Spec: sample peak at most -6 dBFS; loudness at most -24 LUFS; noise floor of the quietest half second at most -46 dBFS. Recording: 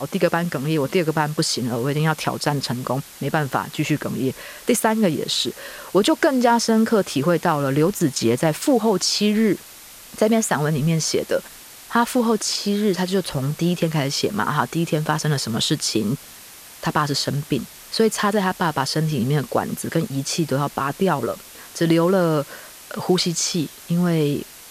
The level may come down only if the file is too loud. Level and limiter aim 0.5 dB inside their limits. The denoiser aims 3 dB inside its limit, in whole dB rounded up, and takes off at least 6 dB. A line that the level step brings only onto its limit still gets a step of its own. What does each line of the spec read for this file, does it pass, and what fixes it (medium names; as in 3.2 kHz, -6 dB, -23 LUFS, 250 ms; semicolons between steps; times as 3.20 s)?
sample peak -4.5 dBFS: fail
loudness -21.0 LUFS: fail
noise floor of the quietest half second -42 dBFS: fail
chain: noise reduction 6 dB, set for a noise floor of -42 dBFS; trim -3.5 dB